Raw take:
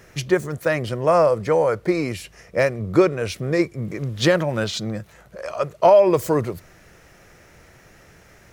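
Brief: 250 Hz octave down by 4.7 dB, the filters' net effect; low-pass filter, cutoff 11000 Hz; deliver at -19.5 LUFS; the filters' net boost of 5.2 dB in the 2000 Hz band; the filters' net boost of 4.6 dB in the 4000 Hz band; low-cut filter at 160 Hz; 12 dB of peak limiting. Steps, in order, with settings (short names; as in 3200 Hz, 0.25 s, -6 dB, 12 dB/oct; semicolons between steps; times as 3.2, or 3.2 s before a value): HPF 160 Hz; LPF 11000 Hz; bell 250 Hz -7.5 dB; bell 2000 Hz +5.5 dB; bell 4000 Hz +4 dB; gain +7 dB; limiter -8 dBFS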